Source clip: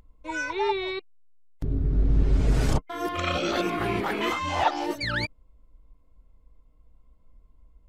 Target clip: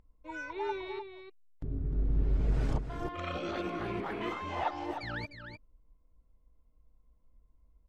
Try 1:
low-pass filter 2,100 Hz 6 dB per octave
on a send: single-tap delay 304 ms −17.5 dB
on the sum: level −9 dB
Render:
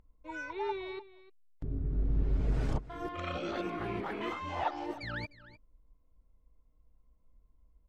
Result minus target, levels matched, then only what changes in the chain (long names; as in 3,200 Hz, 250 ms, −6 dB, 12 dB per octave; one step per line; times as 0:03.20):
echo-to-direct −9 dB
change: single-tap delay 304 ms −8.5 dB